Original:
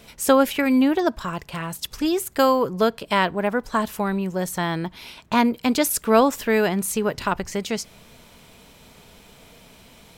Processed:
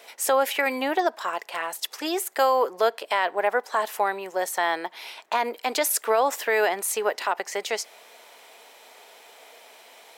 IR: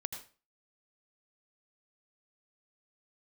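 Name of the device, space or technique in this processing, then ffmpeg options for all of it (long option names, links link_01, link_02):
laptop speaker: -af "highpass=frequency=410:width=0.5412,highpass=frequency=410:width=1.3066,equalizer=frequency=770:width_type=o:width=0.47:gain=6.5,equalizer=frequency=1900:width_type=o:width=0.39:gain=5,alimiter=limit=-12dB:level=0:latency=1:release=69"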